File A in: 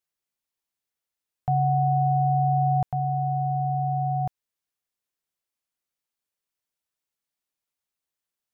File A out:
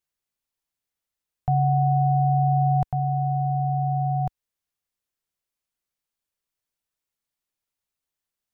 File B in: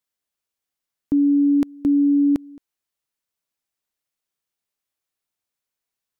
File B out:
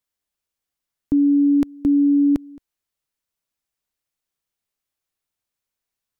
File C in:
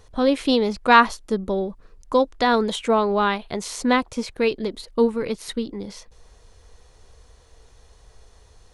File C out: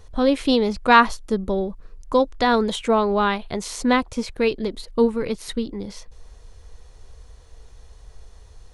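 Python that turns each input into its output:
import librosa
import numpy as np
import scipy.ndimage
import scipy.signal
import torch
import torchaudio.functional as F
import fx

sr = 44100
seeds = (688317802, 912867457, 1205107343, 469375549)

y = fx.low_shelf(x, sr, hz=94.0, db=8.5)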